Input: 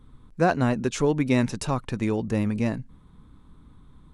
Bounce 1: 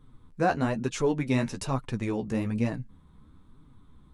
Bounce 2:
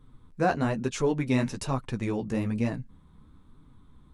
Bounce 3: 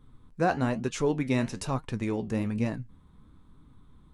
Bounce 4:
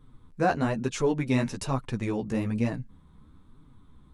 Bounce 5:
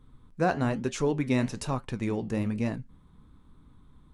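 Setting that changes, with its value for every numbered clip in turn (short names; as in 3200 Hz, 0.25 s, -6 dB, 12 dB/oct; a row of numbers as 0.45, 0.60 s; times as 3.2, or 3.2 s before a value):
flange, regen: +24, -21, +67, +4, -74%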